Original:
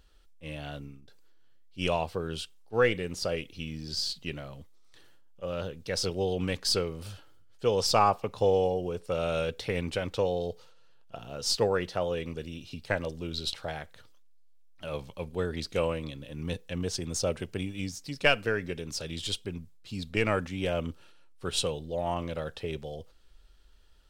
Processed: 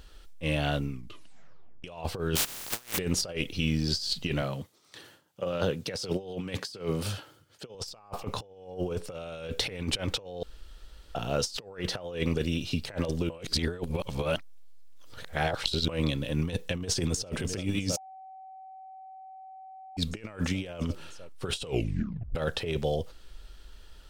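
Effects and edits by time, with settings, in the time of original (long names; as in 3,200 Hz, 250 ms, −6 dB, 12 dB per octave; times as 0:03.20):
0:00.90: tape stop 0.94 s
0:02.35–0:02.97: compressing power law on the bin magnitudes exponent 0.13
0:04.42–0:07.75: high-pass filter 100 Hz 24 dB per octave
0:10.43–0:11.15: fill with room tone
0:13.30–0:15.89: reverse
0:16.75–0:17.33: delay throw 330 ms, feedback 85%, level −16.5 dB
0:17.97–0:19.97: beep over 761 Hz −22 dBFS
0:21.64: tape stop 0.71 s
whole clip: compressor whose output falls as the input rises −36 dBFS, ratio −0.5; level +4.5 dB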